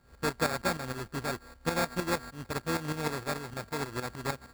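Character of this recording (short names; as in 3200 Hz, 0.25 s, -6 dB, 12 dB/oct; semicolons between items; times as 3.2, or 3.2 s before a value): a buzz of ramps at a fixed pitch in blocks of 32 samples; tremolo saw up 6.5 Hz, depth 70%; aliases and images of a low sample rate 3000 Hz, jitter 0%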